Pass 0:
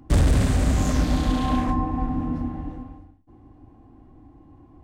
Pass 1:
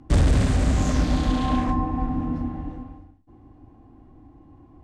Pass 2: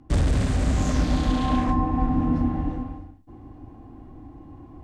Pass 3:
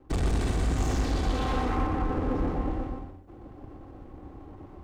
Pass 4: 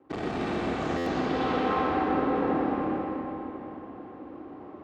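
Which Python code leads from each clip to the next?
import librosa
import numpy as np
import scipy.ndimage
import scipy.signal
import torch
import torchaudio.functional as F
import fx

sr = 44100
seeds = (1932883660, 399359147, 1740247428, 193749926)

y1 = scipy.signal.sosfilt(scipy.signal.butter(2, 8400.0, 'lowpass', fs=sr, output='sos'), x)
y2 = fx.rider(y1, sr, range_db=10, speed_s=0.5)
y3 = fx.lower_of_two(y2, sr, delay_ms=2.6)
y3 = 10.0 ** (-21.0 / 20.0) * np.tanh(y3 / 10.0 ** (-21.0 / 20.0))
y3 = y3 + 10.0 ** (-4.5 / 20.0) * np.pad(y3, (int(121 * sr / 1000.0), 0))[:len(y3)]
y3 = y3 * 10.0 ** (-1.5 / 20.0)
y4 = fx.bandpass_edges(y3, sr, low_hz=230.0, high_hz=3000.0)
y4 = fx.rev_freeverb(y4, sr, rt60_s=3.8, hf_ratio=0.8, predelay_ms=10, drr_db=-4.0)
y4 = fx.buffer_glitch(y4, sr, at_s=(0.97,), block=512, repeats=7)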